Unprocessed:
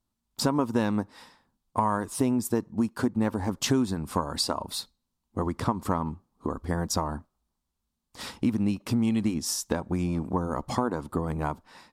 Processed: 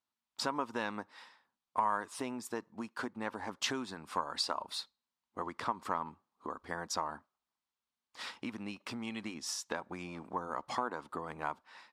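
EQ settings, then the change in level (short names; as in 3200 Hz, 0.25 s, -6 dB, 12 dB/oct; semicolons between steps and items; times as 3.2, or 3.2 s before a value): band-pass 2000 Hz, Q 0.67; -1.5 dB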